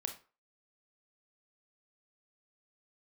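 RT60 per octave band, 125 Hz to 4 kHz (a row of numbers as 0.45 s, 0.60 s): 0.30 s, 0.30 s, 0.35 s, 0.40 s, 0.30 s, 0.25 s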